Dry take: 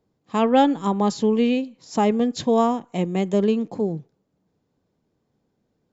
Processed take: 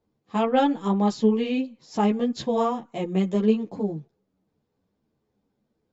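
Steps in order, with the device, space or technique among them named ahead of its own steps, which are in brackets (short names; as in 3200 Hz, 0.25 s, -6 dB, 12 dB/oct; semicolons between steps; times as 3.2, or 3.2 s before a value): string-machine ensemble chorus (ensemble effect; LPF 6200 Hz 12 dB/oct)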